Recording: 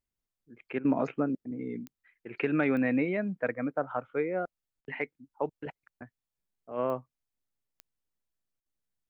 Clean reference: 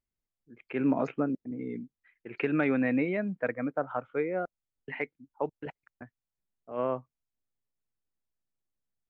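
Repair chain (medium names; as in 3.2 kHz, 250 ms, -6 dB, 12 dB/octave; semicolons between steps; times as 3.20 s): de-click; interpolate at 0.79/4.81/8.60 s, 57 ms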